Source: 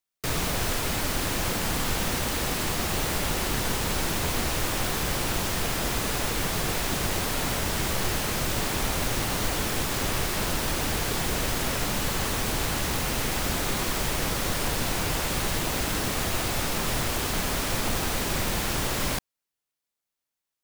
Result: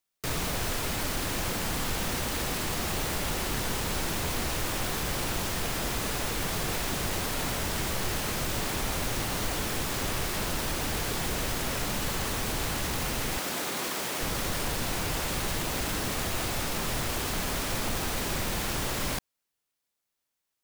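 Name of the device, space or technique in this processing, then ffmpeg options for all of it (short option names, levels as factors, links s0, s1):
clipper into limiter: -filter_complex "[0:a]asoftclip=type=hard:threshold=0.119,alimiter=level_in=1.12:limit=0.0631:level=0:latency=1:release=62,volume=0.891,asettb=1/sr,asplit=3[s0][s1][s2];[s0]atrim=end=13.384[s3];[s1]atrim=start=13.38:end=14.21,asetpts=PTS-STARTPTS,afade=t=in:d=0.004:c=qsin,afade=t=out:st=0.826:d=0.004:c=qsin,highpass=230[s4];[s2]atrim=start=14.206[s5];[s3][s4]acrossfade=d=0.004:c1=hsin:c2=qsin[s6];[s6][s5]acrossfade=d=0.004:c1=qsin:c2=hsin,volume=1.41"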